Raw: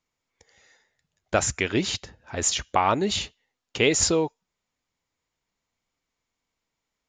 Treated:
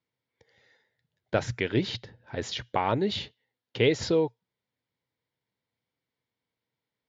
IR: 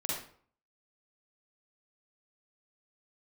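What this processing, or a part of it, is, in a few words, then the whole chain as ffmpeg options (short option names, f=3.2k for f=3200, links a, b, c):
guitar cabinet: -af "highpass=100,equalizer=f=120:t=q:w=4:g=10,equalizer=f=470:t=q:w=4:g=3,equalizer=f=720:t=q:w=4:g=-4,equalizer=f=1.2k:t=q:w=4:g=-8,equalizer=f=2.6k:t=q:w=4:g=-6,lowpass=f=4.3k:w=0.5412,lowpass=f=4.3k:w=1.3066,volume=-2.5dB"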